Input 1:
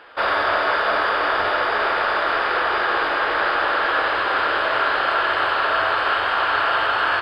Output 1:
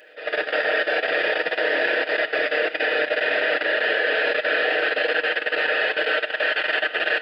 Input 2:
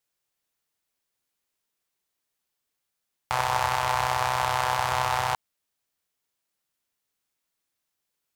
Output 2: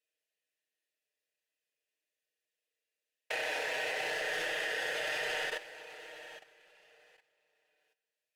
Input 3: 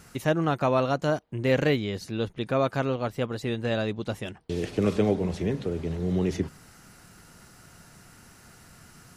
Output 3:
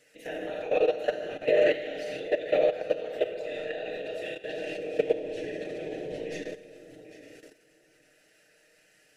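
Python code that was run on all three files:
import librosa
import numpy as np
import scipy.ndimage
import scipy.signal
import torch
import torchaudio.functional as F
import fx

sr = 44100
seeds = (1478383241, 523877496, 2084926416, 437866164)

y = fx.vowel_filter(x, sr, vowel='e')
y = fx.high_shelf(y, sr, hz=8600.0, db=10.5)
y = fx.echo_feedback(y, sr, ms=798, feedback_pct=18, wet_db=-7.5)
y = fx.whisperise(y, sr, seeds[0])
y = fx.high_shelf(y, sr, hz=2800.0, db=12.0)
y = fx.rev_schroeder(y, sr, rt60_s=1.3, comb_ms=25, drr_db=1.0)
y = fx.level_steps(y, sr, step_db=14)
y = y + 0.57 * np.pad(y, (int(6.5 * sr / 1000.0), 0))[:len(y)]
y = F.gain(torch.from_numpy(y), 5.5).numpy()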